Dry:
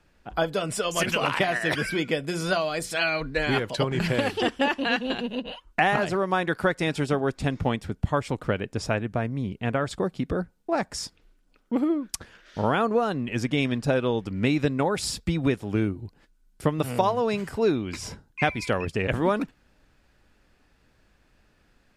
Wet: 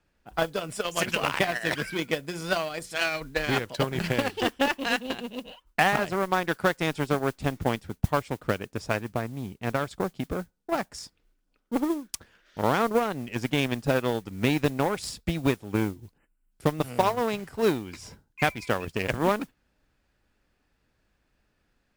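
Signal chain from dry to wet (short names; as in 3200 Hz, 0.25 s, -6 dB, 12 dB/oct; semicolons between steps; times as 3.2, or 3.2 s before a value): added harmonics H 7 -21 dB, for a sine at -9 dBFS; modulation noise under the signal 22 dB; spectral delete 16.18–16.52, 3100–7100 Hz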